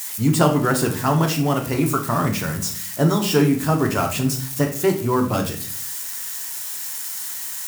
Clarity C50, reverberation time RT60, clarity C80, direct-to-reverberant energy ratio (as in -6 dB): 10.0 dB, 0.45 s, 13.5 dB, 2.5 dB